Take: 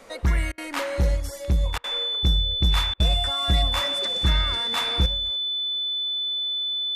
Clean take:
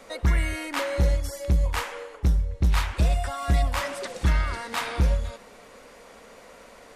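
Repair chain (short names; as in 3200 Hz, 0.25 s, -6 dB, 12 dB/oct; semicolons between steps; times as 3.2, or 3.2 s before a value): notch 3500 Hz, Q 30; interpolate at 0.52/1.78/2.94, 58 ms; gain correction +10.5 dB, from 5.06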